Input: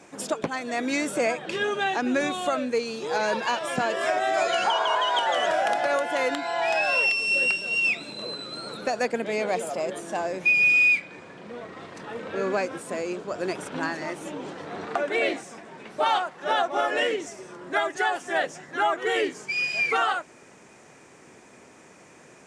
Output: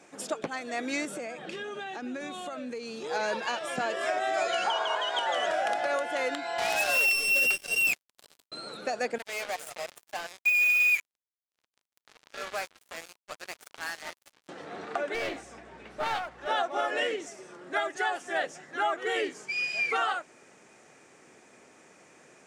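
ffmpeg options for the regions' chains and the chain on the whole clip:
-filter_complex "[0:a]asettb=1/sr,asplit=3[a][b][c];[a]atrim=end=1.054[d];[b]atrim=start=1.05:end=3.04,asetpts=PTS-STARTPTS,afade=t=in:d=0.004:c=qsin,afade=t=out:st=1.986:d=0.004:c=qsin,acompressor=threshold=-31dB:ratio=4:attack=3.2:release=140:knee=1:detection=peak,highpass=f=170:t=q:w=2[e];[c]atrim=start=3.036[f];[d][e]acrossfade=d=0.004:c1=hsin:c2=qsin[g];[g][f]acrossfade=d=0.004:c1=qsin:c2=hsin,asettb=1/sr,asplit=3[h][i][j];[h]atrim=end=6.584[k];[i]atrim=start=6.58:end=8.52,asetpts=PTS-STARTPTS,afade=t=in:d=0.004:c=qsin,afade=t=out:st=1.936:d=0.004:c=qsin,aecho=1:1:7:0.33,atrim=end_sample=85554,acrusher=bits=3:mix=0:aa=0.5[l];[j]atrim=start=8.516[m];[k][l]acrossfade=d=0.004:c1=hsin:c2=qsin[n];[n][m]acrossfade=d=0.004:c1=qsin:c2=hsin,asettb=1/sr,asplit=3[o][p][q];[o]atrim=end=9.184[r];[p]atrim=start=9.18:end=14.49,asetpts=PTS-STARTPTS,afade=t=in:d=0.004:c=qsin,afade=t=out:st=5.306:d=0.004:c=qsin,highpass=790,aecho=1:1:6.6:0.31,atrim=end_sample=234171,acrusher=bits=4:mix=0:aa=0.5[s];[q]atrim=start=14.486[t];[r][s]acrossfade=d=0.004:c1=hsin:c2=qsin[u];[u][t]acrossfade=d=0.004:c1=qsin:c2=hsin,asettb=1/sr,asplit=3[v][w][x];[v]atrim=end=15.144[y];[w]atrim=start=15.14:end=16.47,asetpts=PTS-STARTPTS,afade=t=in:d=0.004:c=qsin,afade=t=out:st=1.326:d=0.004:c=qsin,highshelf=f=6.3k:g=-6,aeval=exprs='val(0)+0.00398*(sin(2*PI*60*n/s)+sin(2*PI*2*60*n/s)/2+sin(2*PI*3*60*n/s)/3+sin(2*PI*4*60*n/s)/4+sin(2*PI*5*60*n/s)/5)':c=same,aeval=exprs='clip(val(0),-1,0.0251)':c=same[z];[x]atrim=start=16.466[aa];[y][z]acrossfade=d=0.004:c1=hsin:c2=qsin[ab];[ab][aa]acrossfade=d=0.004:c1=qsin:c2=hsin,lowshelf=f=180:g=-8.5,bandreject=f=990:w=12,volume=-4dB"

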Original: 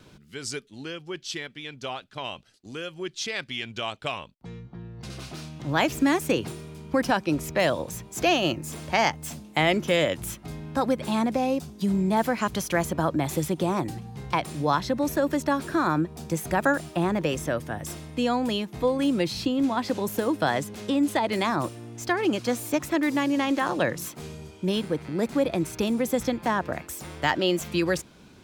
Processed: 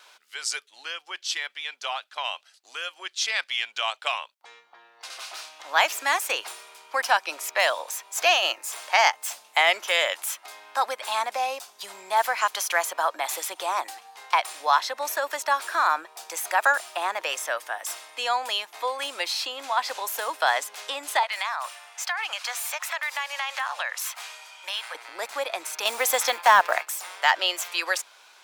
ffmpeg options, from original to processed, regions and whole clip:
-filter_complex "[0:a]asettb=1/sr,asplit=3[a][b][c];[a]atrim=end=21.234[d];[b]atrim=start=21.23:end=24.95,asetpts=PTS-STARTPTS,afade=t=in:d=0.004:c=qsin,afade=t=out:st=3.716:d=0.004:c=qsin,highpass=f=620:w=0.5412,highpass=f=620:w=1.3066,equalizer=f=2.2k:w=0.67:g=5,acompressor=threshold=-32dB:ratio=3:attack=3.2:release=140:knee=1:detection=peak[e];[c]atrim=start=24.946[f];[d][e]acrossfade=d=0.004:c1=hsin:c2=qsin[g];[g][f]acrossfade=d=0.004:c1=qsin:c2=hsin,asettb=1/sr,asplit=3[h][i][j];[h]atrim=end=25.854[k];[i]atrim=start=25.85:end=26.87,asetpts=PTS-STARTPTS,afade=t=in:d=0.004:c=qsin,afade=t=out:st=1.016:d=0.004:c=qsin,agate=range=-33dB:threshold=-37dB:ratio=3:release=100:detection=peak,acontrast=81,acrusher=bits=8:mode=log:mix=0:aa=0.000001[l];[j]atrim=start=26.866[m];[k][l]acrossfade=d=0.004:c1=hsin:c2=qsin[n];[n][m]acrossfade=d=0.004:c1=qsin:c2=hsin,highpass=f=750:w=0.5412,highpass=f=750:w=1.3066,acontrast=68,volume=-1dB"

